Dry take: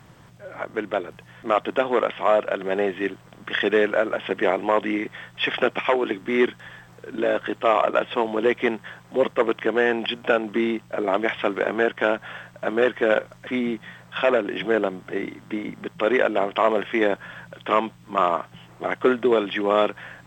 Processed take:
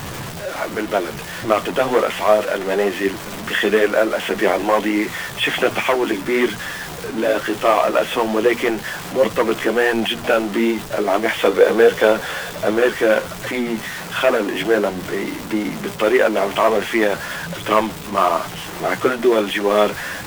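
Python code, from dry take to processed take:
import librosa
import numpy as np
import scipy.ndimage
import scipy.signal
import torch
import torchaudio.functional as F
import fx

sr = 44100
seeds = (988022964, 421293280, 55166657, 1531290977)

p1 = x + 0.5 * 10.0 ** (-26.5 / 20.0) * np.sign(x)
p2 = fx.hum_notches(p1, sr, base_hz=60, count=4)
p3 = fx.quant_float(p2, sr, bits=2)
p4 = p2 + F.gain(torch.from_numpy(p3), -5.0).numpy()
p5 = fx.chorus_voices(p4, sr, voices=2, hz=1.3, base_ms=12, depth_ms=3.0, mix_pct=35)
p6 = fx.small_body(p5, sr, hz=(480.0, 3500.0), ring_ms=45, db=fx.line((11.38, 12.0), (12.76, 9.0)), at=(11.38, 12.76), fade=0.02)
y = F.gain(torch.from_numpy(p6), 1.5).numpy()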